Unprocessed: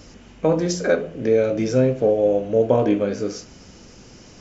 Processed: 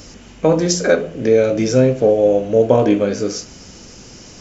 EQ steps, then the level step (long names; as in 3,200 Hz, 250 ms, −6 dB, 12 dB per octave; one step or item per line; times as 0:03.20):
high-shelf EQ 5,400 Hz +9 dB
+4.5 dB